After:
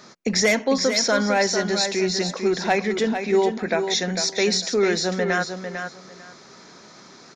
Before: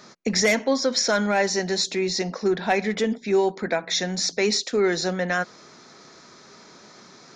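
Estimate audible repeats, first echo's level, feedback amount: 2, −7.5 dB, 19%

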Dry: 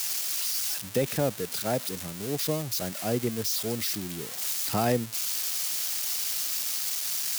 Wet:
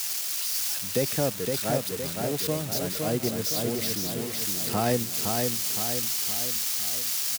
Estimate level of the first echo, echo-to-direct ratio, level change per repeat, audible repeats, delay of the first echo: −4.0 dB, −2.5 dB, −5.5 dB, 5, 514 ms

